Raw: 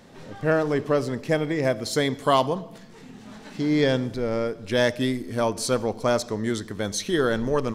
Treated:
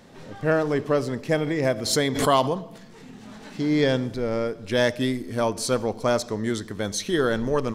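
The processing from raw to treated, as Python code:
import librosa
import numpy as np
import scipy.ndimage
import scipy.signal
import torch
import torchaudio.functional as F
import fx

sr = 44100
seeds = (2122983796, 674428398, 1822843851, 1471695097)

y = fx.pre_swell(x, sr, db_per_s=69.0, at=(1.37, 3.57))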